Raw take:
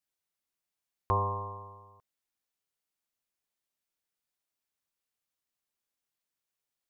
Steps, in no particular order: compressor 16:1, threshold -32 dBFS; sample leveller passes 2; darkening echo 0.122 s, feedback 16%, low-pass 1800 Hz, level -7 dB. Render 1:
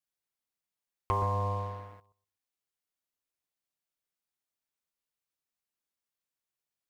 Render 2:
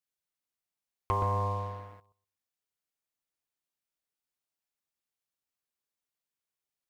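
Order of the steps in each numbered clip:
darkening echo > compressor > sample leveller; compressor > darkening echo > sample leveller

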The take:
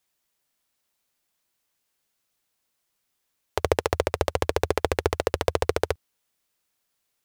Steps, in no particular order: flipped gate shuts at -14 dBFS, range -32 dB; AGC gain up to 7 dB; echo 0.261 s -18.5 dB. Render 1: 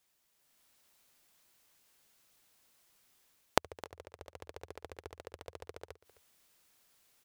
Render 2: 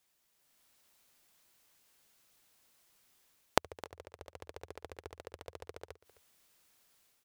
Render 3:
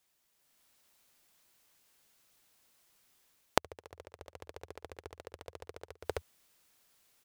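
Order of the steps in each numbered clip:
flipped gate > echo > AGC; flipped gate > AGC > echo; echo > flipped gate > AGC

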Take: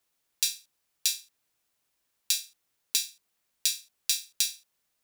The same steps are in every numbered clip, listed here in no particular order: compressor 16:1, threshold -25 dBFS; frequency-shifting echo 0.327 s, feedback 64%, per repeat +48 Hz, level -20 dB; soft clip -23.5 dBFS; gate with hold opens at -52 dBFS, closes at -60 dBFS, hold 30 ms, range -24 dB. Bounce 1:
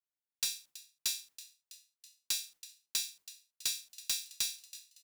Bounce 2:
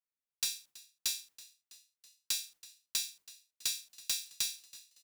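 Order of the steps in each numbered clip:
gate with hold > compressor > frequency-shifting echo > soft clip; gate with hold > compressor > soft clip > frequency-shifting echo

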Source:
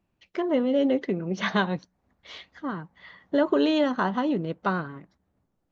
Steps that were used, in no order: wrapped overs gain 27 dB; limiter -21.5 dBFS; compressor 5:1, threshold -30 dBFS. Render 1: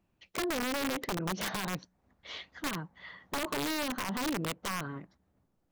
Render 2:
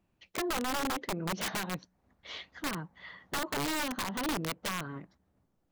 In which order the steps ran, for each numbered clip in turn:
limiter > compressor > wrapped overs; compressor > wrapped overs > limiter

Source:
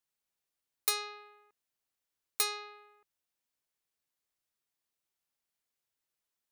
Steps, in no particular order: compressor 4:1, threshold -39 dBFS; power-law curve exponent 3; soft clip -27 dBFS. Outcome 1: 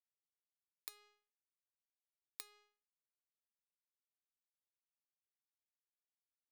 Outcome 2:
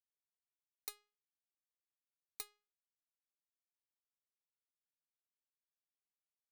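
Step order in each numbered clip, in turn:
soft clip > compressor > power-law curve; power-law curve > soft clip > compressor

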